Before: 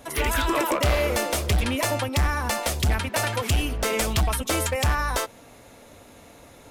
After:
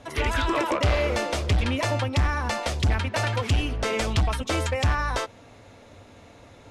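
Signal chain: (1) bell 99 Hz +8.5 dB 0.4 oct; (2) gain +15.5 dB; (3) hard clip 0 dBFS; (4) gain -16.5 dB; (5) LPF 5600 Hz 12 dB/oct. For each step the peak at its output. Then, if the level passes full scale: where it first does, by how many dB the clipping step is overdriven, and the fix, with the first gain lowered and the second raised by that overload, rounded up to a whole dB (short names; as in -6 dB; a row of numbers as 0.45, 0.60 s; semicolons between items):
-10.0, +5.5, 0.0, -16.5, -16.0 dBFS; step 2, 5.5 dB; step 2 +9.5 dB, step 4 -10.5 dB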